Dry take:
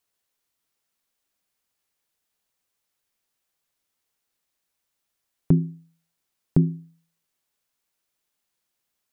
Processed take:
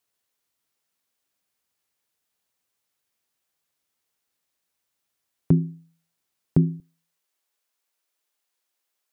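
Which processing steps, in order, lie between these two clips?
high-pass 57 Hz 12 dB/octave, from 6.80 s 360 Hz

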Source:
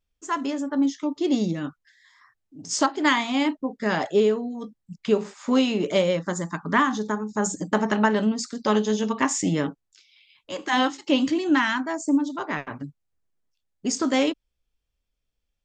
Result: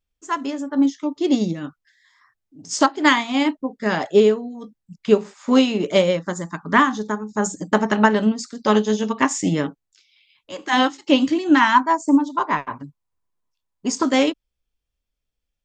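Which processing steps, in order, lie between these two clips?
11.61–14.03 s: peaking EQ 1 kHz +13.5 dB 0.35 oct; upward expansion 1.5:1, over -31 dBFS; trim +6.5 dB

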